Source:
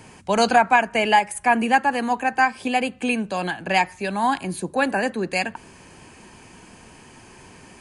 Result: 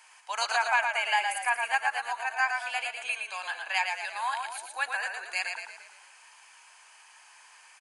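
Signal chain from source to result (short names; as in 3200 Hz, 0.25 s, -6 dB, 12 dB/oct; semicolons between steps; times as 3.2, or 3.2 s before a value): HPF 940 Hz 24 dB/oct; on a send: frequency-shifting echo 0.114 s, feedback 49%, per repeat -31 Hz, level -5 dB; on the sum: gain -6 dB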